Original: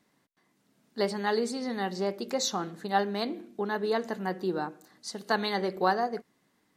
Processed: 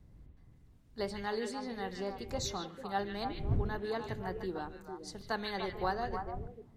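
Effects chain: wind noise 100 Hz -35 dBFS; repeats whose band climbs or falls 149 ms, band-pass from 2.6 kHz, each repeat -1.4 oct, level -1 dB; trim -8.5 dB

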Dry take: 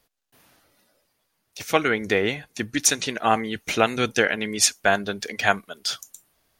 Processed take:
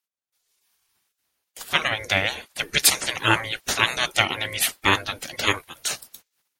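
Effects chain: spectral gate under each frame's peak -15 dB weak; gate -58 dBFS, range -13 dB; level rider gain up to 14.5 dB

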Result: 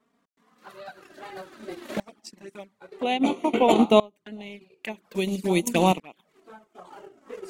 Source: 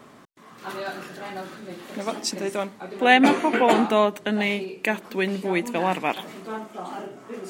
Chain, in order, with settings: 5.15–5.92 s: tone controls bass +6 dB, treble +14 dB; transient shaper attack +5 dB, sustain -11 dB; in parallel at 0 dB: peak limiter -10.5 dBFS, peak gain reduction 10.5 dB; on the sum: touch-sensitive flanger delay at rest 4.8 ms, full sweep at -13 dBFS; sawtooth tremolo in dB swelling 0.5 Hz, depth 26 dB

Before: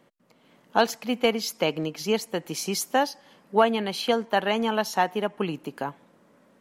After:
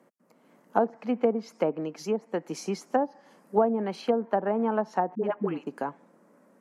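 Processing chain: high-pass 170 Hz 24 dB/octave; low-pass that closes with the level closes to 680 Hz, closed at -18.5 dBFS; peaking EQ 3.4 kHz -13.5 dB 1.1 oct; 1.70–2.51 s: harmonic-percussive split harmonic -3 dB; 3.01–3.96 s: treble shelf 6.5 kHz +8 dB; 5.15–5.67 s: phase dispersion highs, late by 82 ms, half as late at 510 Hz

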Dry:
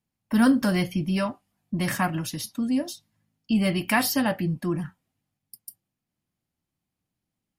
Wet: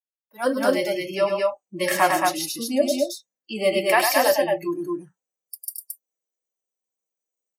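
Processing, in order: loudspeakers at several distances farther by 35 m -5 dB, 76 m -3 dB; level rider gain up to 16.5 dB; spectral noise reduction 25 dB; resonant high-pass 480 Hz, resonance Q 4.9; trim -6.5 dB

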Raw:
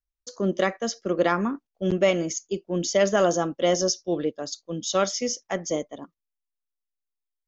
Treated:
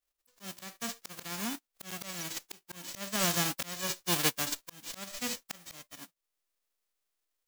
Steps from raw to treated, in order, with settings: formants flattened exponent 0.1; slow attack 770 ms

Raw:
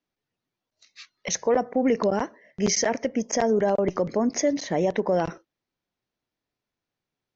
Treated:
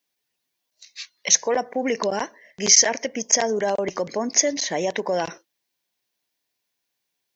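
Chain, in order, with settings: tilt EQ +3.5 dB/octave; band-stop 1.3 kHz, Q 6.3; trim +2.5 dB

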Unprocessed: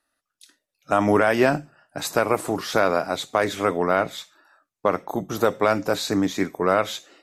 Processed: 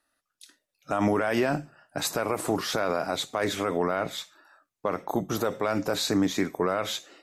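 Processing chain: peak limiter -15 dBFS, peak gain reduction 11 dB

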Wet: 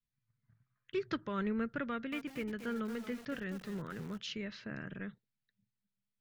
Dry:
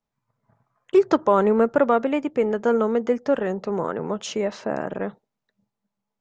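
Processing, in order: FFT filter 120 Hz 0 dB, 820 Hz -27 dB, 1.6 kHz -5 dB, 4.4 kHz -3 dB, 7.7 kHz -21 dB; 1.89–4.18 s: bit-crushed delay 230 ms, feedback 35%, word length 7-bit, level -9.5 dB; trim -3.5 dB

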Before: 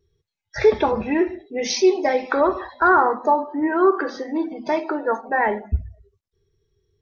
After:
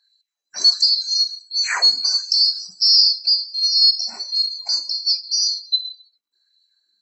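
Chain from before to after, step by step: split-band scrambler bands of 4 kHz; LFO high-pass sine 1.4 Hz 220–3200 Hz

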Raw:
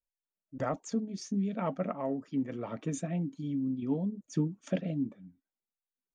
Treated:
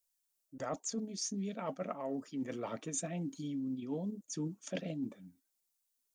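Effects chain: tone controls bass -7 dB, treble +13 dB; reverse; compression, threshold -37 dBFS, peak gain reduction 10 dB; reverse; trim +2 dB

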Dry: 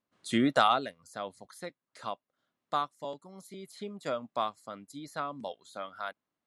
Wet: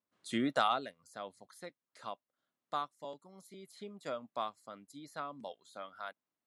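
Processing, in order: bass shelf 68 Hz -11.5 dB; trim -6 dB

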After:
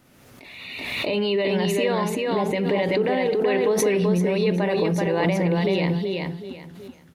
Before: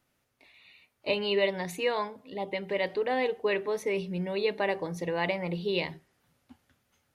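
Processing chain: peaking EQ 220 Hz +7 dB 2.1 oct; peak limiter -24 dBFS, peak gain reduction 11.5 dB; on a send: feedback delay 381 ms, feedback 25%, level -3 dB; on the sum: swell ahead of each attack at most 32 dB/s; trim +8 dB

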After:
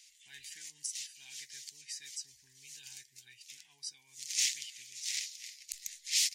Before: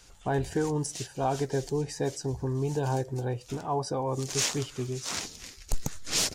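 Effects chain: elliptic high-pass 2 kHz, stop band 40 dB; trim -1.5 dB

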